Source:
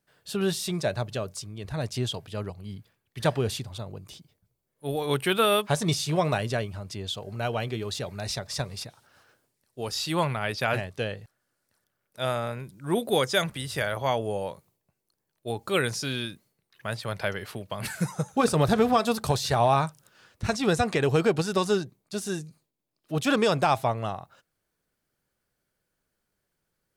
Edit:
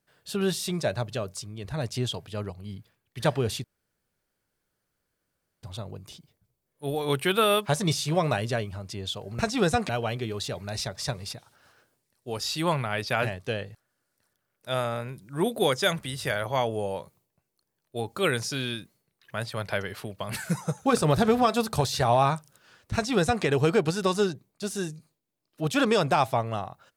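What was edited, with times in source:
0:03.64: splice in room tone 1.99 s
0:20.45–0:20.95: duplicate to 0:07.40

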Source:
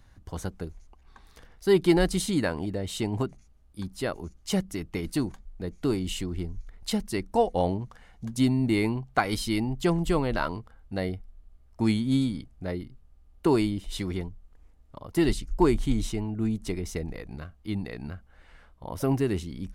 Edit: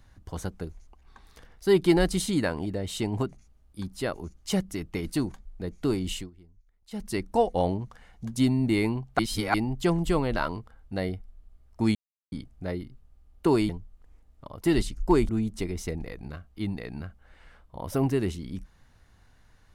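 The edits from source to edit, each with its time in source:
0:06.14–0:07.07: duck −21.5 dB, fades 0.17 s
0:09.19–0:09.54: reverse
0:11.95–0:12.32: silence
0:13.69–0:14.20: remove
0:15.80–0:16.37: remove

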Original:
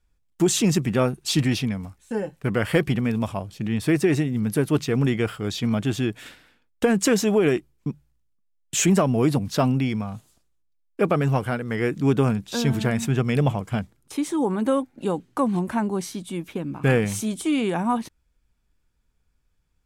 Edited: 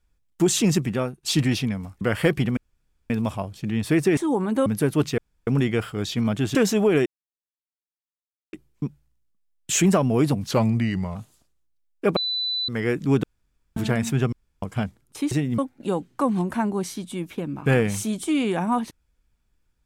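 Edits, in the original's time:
0:00.78–0:01.23: fade out, to −15 dB
0:02.01–0:02.51: remove
0:03.07: splice in room tone 0.53 s
0:04.14–0:04.41: swap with 0:14.27–0:14.76
0:04.93: splice in room tone 0.29 s
0:06.01–0:07.06: remove
0:07.57: splice in silence 1.47 s
0:09.55–0:10.11: play speed 87%
0:11.12–0:11.64: beep over 3,990 Hz −23 dBFS
0:12.19–0:12.72: fill with room tone
0:13.28–0:13.58: fill with room tone

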